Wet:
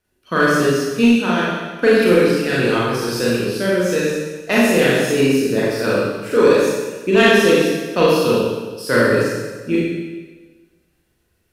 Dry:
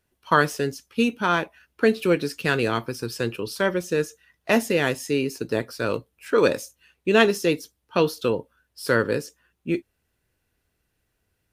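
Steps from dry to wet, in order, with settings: rotary speaker horn 0.9 Hz, later 7.5 Hz, at 3.63; on a send: analogue delay 0.119 s, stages 1024, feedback 66%, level -22.5 dB; on the sum: Schroeder reverb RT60 1.3 s, combs from 30 ms, DRR -7 dB; in parallel at -4 dB: overloaded stage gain 13 dB; on the sum: notches 50/100/150 Hz; gain -1.5 dB

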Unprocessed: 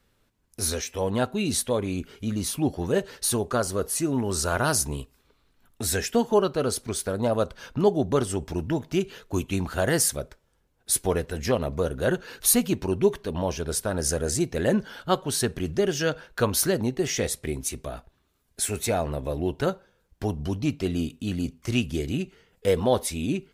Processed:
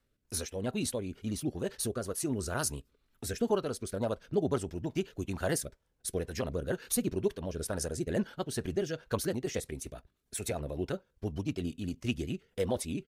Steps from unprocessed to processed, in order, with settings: rotary speaker horn 1.2 Hz, later 5.5 Hz, at 16.25; tempo 1.8×; gain -6 dB

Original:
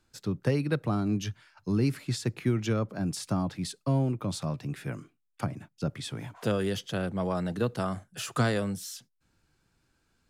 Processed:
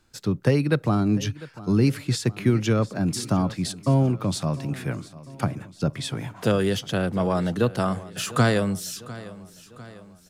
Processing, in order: feedback echo 0.7 s, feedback 53%, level -18 dB; gain +6.5 dB

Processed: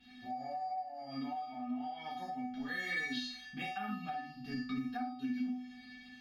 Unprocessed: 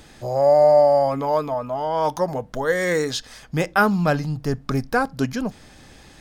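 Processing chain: resonator 250 Hz, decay 0.42 s, harmonics odd, mix 100%; reverb, pre-delay 3 ms, DRR -6.5 dB; dynamic EQ 750 Hz, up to +5 dB, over -40 dBFS; compressor 5:1, threshold -36 dBFS, peak gain reduction 18.5 dB; EQ curve 150 Hz 0 dB, 420 Hz -7 dB, 1100 Hz -9 dB, 2300 Hz +7 dB, 3700 Hz +4 dB, 7700 Hz -22 dB, 12000 Hz -14 dB; gain +4.5 dB

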